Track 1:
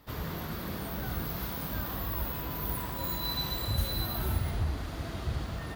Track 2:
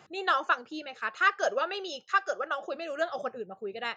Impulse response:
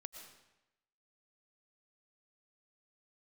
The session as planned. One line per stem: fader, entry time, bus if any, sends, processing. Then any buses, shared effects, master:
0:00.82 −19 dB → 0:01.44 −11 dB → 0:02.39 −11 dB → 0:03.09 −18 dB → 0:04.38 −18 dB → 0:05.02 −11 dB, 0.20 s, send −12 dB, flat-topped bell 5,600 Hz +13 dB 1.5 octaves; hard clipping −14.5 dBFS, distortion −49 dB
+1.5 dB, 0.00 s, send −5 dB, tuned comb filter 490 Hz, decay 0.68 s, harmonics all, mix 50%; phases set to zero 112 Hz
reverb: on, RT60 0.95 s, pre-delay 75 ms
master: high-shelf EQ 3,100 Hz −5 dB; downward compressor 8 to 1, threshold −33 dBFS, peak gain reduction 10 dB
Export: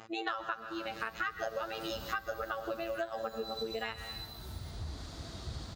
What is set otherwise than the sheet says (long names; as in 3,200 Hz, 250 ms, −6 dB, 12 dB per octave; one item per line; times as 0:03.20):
stem 2 +1.5 dB → +7.5 dB
reverb return +9.5 dB